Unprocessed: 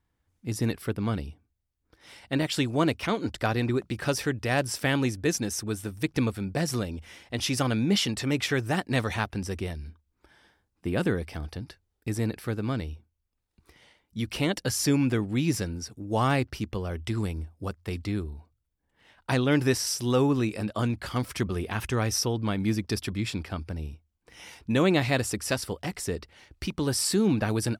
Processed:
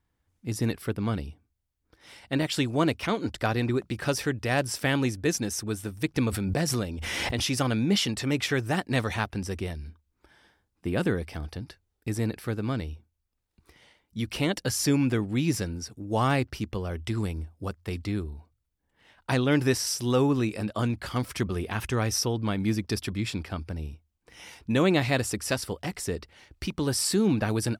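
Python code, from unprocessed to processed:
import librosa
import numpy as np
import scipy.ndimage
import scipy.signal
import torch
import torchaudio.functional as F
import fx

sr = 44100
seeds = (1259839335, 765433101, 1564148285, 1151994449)

y = fx.pre_swell(x, sr, db_per_s=21.0, at=(6.29, 7.5))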